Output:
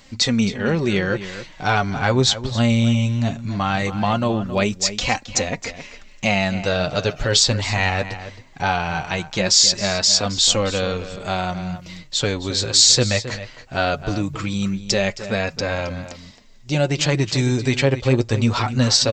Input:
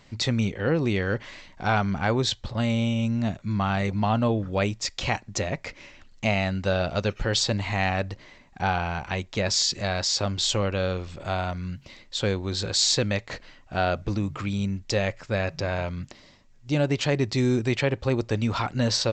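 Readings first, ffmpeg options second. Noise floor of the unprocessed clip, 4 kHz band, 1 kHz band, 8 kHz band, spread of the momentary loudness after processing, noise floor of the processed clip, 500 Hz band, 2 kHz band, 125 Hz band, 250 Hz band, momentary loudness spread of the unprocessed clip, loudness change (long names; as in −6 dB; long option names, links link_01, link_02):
−53 dBFS, +9.0 dB, +5.0 dB, +11.0 dB, 11 LU, −44 dBFS, +4.5 dB, +6.0 dB, +4.5 dB, +5.0 dB, 8 LU, +6.5 dB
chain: -filter_complex "[0:a]highshelf=frequency=4800:gain=10,flanger=delay=3.6:depth=4.9:regen=32:speed=0.19:shape=triangular,asplit=2[link_01][link_02];[link_02]adelay=268.2,volume=-12dB,highshelf=frequency=4000:gain=-6.04[link_03];[link_01][link_03]amix=inputs=2:normalize=0,volume=8dB"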